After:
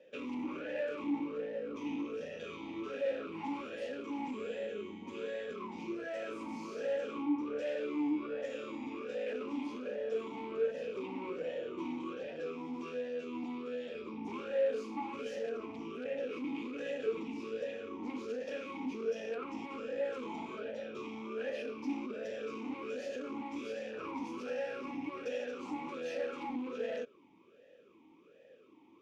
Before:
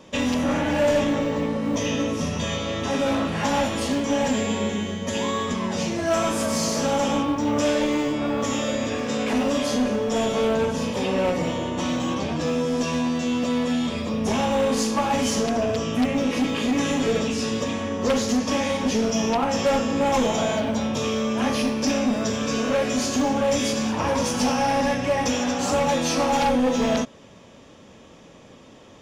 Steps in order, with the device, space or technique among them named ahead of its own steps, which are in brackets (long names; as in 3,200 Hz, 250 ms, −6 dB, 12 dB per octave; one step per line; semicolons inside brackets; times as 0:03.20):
talk box (tube saturation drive 23 dB, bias 0.6; formant filter swept between two vowels e-u 1.3 Hz)